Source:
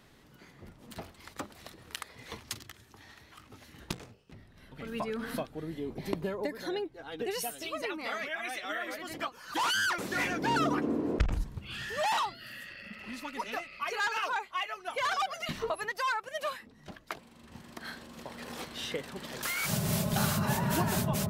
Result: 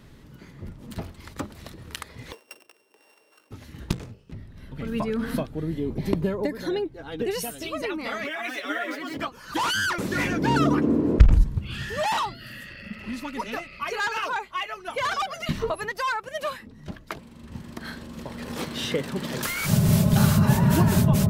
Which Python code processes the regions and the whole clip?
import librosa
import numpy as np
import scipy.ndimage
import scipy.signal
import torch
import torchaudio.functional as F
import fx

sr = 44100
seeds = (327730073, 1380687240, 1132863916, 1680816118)

y = fx.chain(x, sr, fx.sample_sort(block=16),
    fx.ladder_highpass(hz=410.0, resonance_pct=50), at=(2.32, 3.51))
y = fx.chain(y, sr, fx.median_filter(points=5),
    fx.highpass(hz=220.0, slope=24),
    fx.comb(ms=7.1, depth=0.88), at=(8.24, 9.17))
y = fx.chain(y, sr, fx.highpass(hz=110.0, slope=12),
    fx.leveller(passes=1), at=(18.56, 19.46))
y = fx.low_shelf(y, sr, hz=280.0, db=12.0)
y = fx.notch(y, sr, hz=740.0, q=12.0)
y = F.gain(torch.from_numpy(y), 3.5).numpy()